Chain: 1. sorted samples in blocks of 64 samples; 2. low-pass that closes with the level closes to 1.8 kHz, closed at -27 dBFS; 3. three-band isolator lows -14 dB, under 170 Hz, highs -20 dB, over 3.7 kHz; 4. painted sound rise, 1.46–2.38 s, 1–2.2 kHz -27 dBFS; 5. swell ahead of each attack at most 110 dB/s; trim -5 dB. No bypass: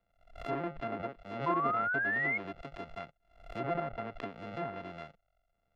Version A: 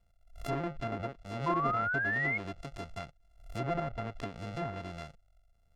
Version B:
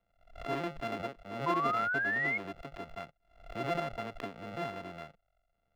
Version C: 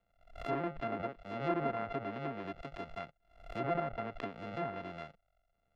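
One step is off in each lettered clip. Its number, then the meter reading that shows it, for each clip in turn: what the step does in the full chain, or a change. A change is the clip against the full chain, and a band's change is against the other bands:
3, 125 Hz band +6.5 dB; 2, 4 kHz band +6.5 dB; 4, 2 kHz band -12.0 dB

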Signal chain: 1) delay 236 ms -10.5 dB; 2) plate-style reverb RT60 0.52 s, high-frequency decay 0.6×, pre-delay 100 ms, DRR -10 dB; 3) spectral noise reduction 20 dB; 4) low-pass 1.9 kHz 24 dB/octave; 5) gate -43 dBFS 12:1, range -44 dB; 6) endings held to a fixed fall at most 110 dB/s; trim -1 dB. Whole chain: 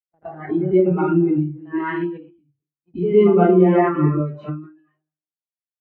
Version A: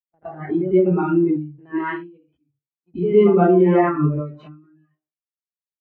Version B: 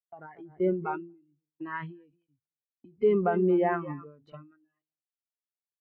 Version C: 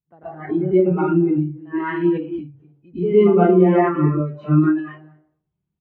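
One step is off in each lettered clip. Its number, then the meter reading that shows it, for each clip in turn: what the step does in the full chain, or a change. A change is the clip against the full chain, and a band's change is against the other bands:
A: 1, momentary loudness spread change -2 LU; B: 2, 125 Hz band -6.5 dB; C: 5, momentary loudness spread change -4 LU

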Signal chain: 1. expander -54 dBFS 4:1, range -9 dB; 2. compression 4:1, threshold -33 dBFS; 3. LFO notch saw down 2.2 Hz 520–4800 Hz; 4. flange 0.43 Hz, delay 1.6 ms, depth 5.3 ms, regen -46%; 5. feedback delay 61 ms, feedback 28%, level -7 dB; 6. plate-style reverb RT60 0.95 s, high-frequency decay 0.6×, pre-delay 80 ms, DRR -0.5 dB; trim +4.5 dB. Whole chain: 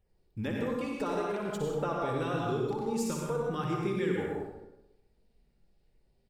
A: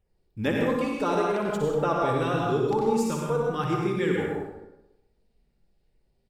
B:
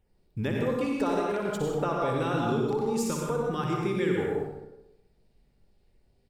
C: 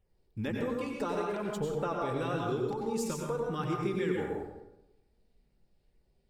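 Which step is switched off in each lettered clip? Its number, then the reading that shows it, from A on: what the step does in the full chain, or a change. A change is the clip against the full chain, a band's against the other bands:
2, mean gain reduction 6.0 dB; 4, loudness change +4.0 LU; 5, echo-to-direct 2.0 dB to 0.5 dB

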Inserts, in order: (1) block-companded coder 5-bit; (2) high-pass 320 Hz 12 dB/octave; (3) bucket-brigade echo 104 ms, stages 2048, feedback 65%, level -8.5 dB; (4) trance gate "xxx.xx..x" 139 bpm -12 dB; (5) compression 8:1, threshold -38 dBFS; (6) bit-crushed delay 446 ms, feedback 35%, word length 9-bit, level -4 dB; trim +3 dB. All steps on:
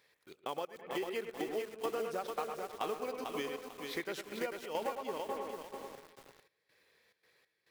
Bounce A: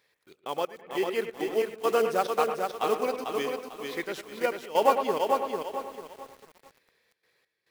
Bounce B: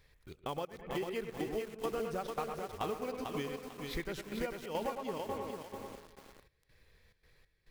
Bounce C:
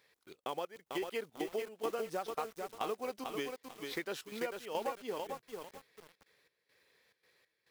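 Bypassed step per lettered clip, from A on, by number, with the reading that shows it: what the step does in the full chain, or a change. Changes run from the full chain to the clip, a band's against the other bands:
5, mean gain reduction 6.5 dB; 2, crest factor change -2.0 dB; 3, momentary loudness spread change -2 LU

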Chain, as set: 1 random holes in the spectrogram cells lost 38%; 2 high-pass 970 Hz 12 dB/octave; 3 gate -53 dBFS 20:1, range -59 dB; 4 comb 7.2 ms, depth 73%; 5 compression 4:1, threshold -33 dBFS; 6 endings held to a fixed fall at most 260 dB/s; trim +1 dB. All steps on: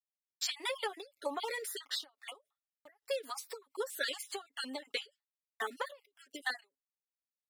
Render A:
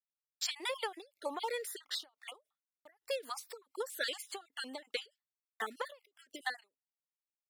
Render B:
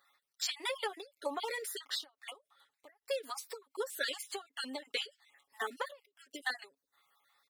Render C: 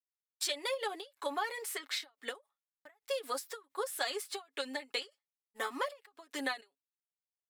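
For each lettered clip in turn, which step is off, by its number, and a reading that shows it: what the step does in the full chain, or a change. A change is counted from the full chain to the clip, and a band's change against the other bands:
4, momentary loudness spread change +2 LU; 3, momentary loudness spread change +1 LU; 1, 250 Hz band +2.0 dB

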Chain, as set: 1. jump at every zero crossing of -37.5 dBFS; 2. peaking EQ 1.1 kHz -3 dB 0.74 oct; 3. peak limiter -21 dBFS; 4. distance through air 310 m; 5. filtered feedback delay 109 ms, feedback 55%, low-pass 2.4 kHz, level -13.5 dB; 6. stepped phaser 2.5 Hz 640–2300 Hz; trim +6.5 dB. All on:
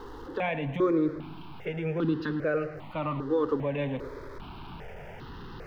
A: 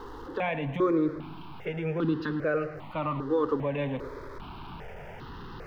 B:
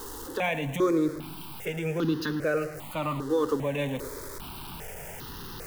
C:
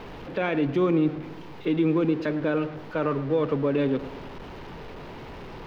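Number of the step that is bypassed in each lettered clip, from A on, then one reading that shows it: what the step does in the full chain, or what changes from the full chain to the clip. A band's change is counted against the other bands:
2, 1 kHz band +2.0 dB; 4, 4 kHz band +6.5 dB; 6, loudness change +4.5 LU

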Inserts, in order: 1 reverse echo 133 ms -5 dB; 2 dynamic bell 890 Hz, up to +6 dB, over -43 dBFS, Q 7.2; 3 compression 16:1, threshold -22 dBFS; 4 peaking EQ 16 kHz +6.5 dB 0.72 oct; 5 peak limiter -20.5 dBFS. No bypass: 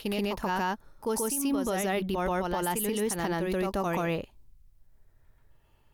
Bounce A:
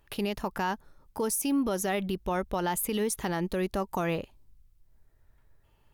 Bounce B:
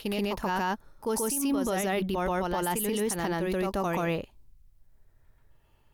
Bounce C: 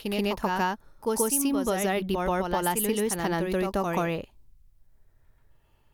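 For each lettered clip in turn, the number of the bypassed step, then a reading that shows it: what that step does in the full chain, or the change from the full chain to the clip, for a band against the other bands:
1, momentary loudness spread change +1 LU; 3, mean gain reduction 3.0 dB; 5, crest factor change +6.0 dB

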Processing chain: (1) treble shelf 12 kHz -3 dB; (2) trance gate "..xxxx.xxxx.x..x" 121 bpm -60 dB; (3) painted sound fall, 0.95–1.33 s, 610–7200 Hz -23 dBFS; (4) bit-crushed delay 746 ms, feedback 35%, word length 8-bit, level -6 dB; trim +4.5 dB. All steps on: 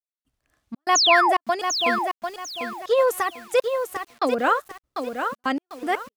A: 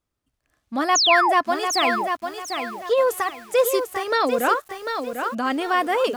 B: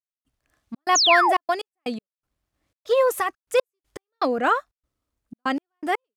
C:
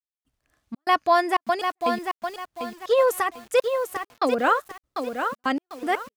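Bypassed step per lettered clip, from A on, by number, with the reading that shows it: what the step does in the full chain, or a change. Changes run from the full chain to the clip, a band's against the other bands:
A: 2, crest factor change -1.5 dB; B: 4, momentary loudness spread change +2 LU; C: 3, 8 kHz band -11.0 dB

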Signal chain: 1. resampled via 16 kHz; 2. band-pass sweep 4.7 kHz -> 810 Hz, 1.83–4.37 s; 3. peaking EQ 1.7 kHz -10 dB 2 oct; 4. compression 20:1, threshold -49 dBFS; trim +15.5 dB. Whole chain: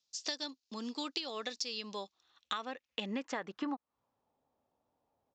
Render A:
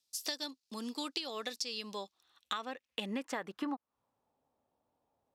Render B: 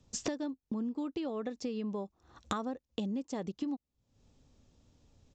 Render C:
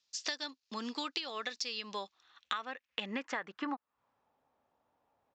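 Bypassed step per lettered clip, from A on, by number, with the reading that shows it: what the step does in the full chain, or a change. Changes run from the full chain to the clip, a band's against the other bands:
1, 8 kHz band +1.5 dB; 2, 4 kHz band -12.5 dB; 3, 2 kHz band +4.5 dB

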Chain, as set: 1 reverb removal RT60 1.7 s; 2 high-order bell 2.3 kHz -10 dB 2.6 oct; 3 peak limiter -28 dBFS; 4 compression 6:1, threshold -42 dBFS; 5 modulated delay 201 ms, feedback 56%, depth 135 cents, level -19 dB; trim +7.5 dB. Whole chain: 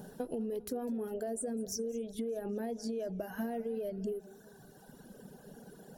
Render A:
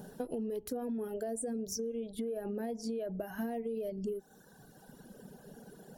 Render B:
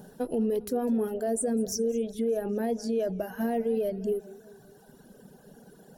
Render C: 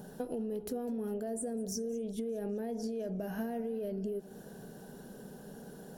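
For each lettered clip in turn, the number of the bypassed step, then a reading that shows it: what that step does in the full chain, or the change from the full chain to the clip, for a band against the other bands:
5, momentary loudness spread change -2 LU; 4, crest factor change -3.5 dB; 1, 125 Hz band +3.5 dB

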